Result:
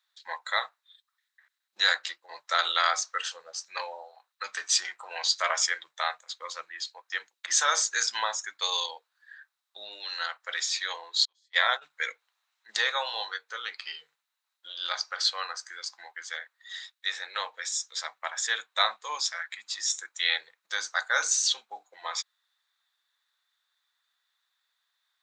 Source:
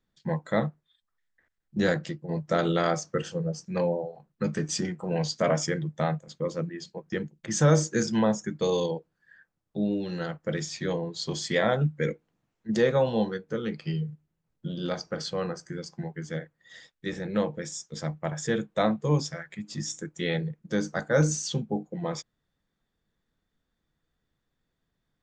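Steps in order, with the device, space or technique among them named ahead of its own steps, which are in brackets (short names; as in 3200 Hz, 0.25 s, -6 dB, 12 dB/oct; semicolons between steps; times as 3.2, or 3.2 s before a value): 11.25–11.9 gate -24 dBFS, range -43 dB; headphones lying on a table (HPF 1000 Hz 24 dB/oct; bell 3900 Hz +11 dB 0.23 oct); gain +6.5 dB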